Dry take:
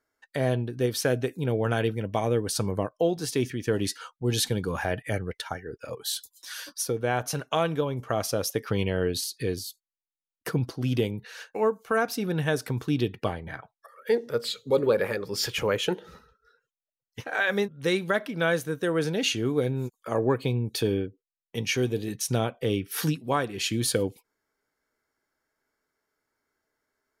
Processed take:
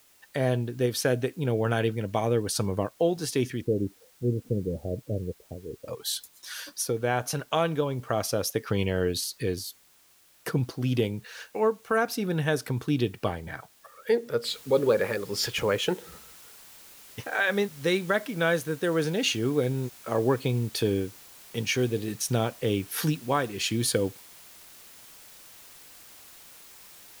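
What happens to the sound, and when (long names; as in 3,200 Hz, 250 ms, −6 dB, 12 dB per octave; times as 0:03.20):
0:03.61–0:05.88: Butterworth low-pass 580 Hz 48 dB per octave
0:14.48: noise floor change −60 dB −50 dB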